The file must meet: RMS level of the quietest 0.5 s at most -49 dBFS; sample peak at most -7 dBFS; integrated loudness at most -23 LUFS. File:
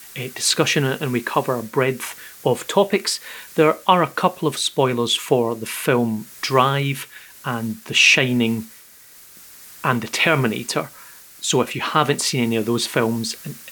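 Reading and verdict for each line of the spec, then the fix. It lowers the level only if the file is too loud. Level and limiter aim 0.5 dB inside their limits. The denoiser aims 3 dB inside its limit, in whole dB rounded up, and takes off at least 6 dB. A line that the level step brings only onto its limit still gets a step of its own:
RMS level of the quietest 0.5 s -46 dBFS: fail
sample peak -2.0 dBFS: fail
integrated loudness -19.5 LUFS: fail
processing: gain -4 dB; limiter -7.5 dBFS

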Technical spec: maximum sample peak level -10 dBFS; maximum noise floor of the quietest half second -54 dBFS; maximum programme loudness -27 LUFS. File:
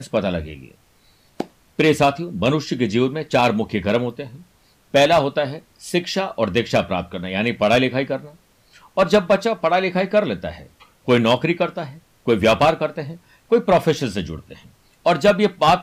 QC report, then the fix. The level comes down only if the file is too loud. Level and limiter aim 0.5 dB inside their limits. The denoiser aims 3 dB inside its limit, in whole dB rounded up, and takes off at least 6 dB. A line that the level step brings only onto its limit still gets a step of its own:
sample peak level -5.0 dBFS: fail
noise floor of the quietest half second -56 dBFS: OK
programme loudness -19.5 LUFS: fail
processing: gain -8 dB

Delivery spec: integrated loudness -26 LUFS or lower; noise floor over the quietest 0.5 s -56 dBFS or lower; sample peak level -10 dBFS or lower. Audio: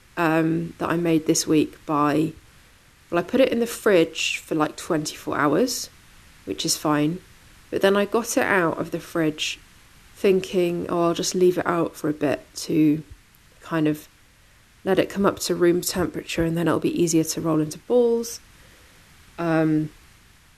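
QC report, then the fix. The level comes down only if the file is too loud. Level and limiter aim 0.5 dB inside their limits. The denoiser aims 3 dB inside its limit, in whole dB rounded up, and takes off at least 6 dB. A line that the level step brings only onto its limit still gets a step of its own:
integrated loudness -22.5 LUFS: fail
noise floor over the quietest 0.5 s -54 dBFS: fail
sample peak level -4.5 dBFS: fail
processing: gain -4 dB; limiter -10.5 dBFS

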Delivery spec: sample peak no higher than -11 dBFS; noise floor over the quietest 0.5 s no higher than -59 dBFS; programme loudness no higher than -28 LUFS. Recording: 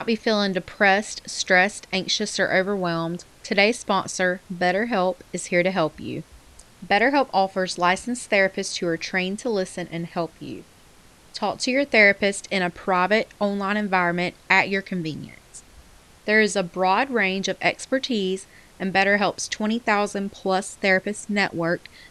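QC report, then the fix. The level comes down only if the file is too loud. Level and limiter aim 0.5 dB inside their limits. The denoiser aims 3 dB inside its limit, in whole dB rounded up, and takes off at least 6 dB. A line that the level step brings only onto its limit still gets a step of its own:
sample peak -3.5 dBFS: fail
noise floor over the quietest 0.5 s -51 dBFS: fail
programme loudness -22.0 LUFS: fail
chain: denoiser 6 dB, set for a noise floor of -51 dBFS; gain -6.5 dB; limiter -11.5 dBFS

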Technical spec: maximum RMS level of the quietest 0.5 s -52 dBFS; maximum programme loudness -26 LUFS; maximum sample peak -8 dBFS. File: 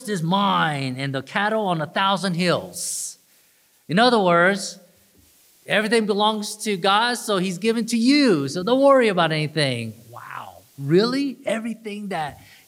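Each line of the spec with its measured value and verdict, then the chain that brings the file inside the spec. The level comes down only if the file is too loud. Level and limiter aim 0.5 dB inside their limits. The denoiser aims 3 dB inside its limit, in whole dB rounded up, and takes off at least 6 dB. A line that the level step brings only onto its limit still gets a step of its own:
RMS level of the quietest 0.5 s -59 dBFS: OK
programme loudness -20.5 LUFS: fail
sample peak -5.0 dBFS: fail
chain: gain -6 dB

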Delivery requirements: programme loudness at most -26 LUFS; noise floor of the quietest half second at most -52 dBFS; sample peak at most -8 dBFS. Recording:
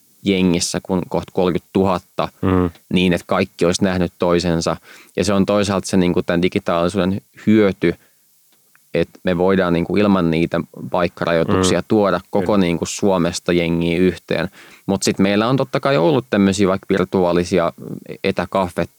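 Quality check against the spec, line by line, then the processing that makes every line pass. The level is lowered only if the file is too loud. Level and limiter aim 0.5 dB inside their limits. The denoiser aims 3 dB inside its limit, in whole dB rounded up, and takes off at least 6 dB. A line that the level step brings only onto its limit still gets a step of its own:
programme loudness -18.0 LUFS: fail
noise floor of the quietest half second -56 dBFS: OK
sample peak -4.0 dBFS: fail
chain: gain -8.5 dB

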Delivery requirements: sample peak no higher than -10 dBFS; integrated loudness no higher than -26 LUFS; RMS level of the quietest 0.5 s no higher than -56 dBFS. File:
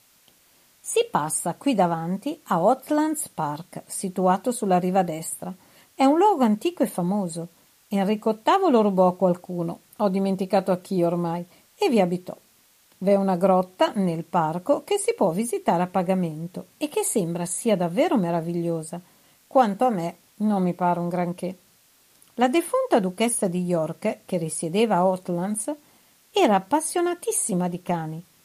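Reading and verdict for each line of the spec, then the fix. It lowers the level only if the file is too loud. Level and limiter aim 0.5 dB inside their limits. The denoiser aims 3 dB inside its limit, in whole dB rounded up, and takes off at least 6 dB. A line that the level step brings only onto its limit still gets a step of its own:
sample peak -5.5 dBFS: fail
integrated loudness -23.5 LUFS: fail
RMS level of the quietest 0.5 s -59 dBFS: OK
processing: gain -3 dB; limiter -10.5 dBFS

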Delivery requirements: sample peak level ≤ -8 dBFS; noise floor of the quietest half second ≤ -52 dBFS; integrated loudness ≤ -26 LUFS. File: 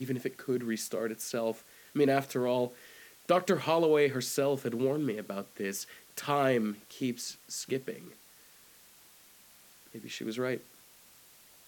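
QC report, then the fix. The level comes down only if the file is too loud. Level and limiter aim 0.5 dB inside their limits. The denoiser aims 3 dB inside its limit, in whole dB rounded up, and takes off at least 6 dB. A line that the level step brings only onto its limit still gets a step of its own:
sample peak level -11.5 dBFS: OK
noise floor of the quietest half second -58 dBFS: OK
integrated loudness -32.0 LUFS: OK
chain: none

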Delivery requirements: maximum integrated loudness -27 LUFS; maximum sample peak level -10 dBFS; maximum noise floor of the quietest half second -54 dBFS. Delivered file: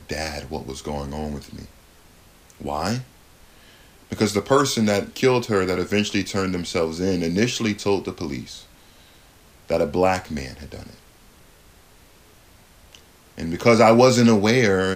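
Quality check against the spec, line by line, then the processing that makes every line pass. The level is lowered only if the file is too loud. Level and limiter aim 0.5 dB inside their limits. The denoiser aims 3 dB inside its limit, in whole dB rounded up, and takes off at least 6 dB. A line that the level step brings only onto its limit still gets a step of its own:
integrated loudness -21.0 LUFS: fail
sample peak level -3.5 dBFS: fail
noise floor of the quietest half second -51 dBFS: fail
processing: gain -6.5 dB; limiter -10.5 dBFS

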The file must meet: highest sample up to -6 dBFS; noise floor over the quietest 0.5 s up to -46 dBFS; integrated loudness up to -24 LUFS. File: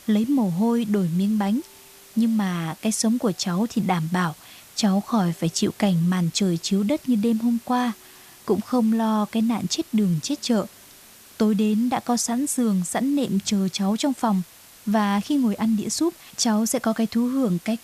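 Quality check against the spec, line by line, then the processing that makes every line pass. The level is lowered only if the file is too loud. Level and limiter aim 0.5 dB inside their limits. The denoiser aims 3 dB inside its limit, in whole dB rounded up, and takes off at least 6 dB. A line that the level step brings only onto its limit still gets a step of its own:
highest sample -8.5 dBFS: OK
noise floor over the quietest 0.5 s -48 dBFS: OK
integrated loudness -23.0 LUFS: fail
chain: gain -1.5 dB

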